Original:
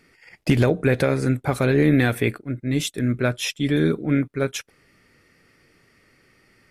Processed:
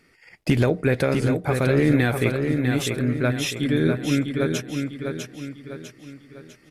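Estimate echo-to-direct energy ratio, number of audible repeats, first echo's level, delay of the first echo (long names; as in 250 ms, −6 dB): −4.5 dB, 5, −5.5 dB, 650 ms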